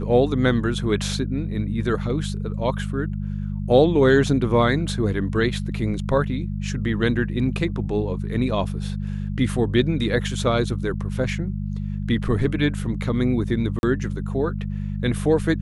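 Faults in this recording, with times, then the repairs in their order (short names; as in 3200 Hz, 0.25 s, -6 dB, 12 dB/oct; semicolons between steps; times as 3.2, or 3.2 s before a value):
hum 50 Hz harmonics 4 -27 dBFS
13.79–13.83 gap 41 ms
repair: de-hum 50 Hz, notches 4; interpolate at 13.79, 41 ms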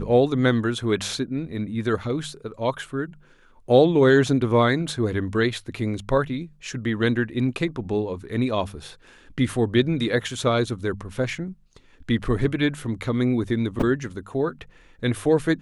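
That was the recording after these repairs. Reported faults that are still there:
none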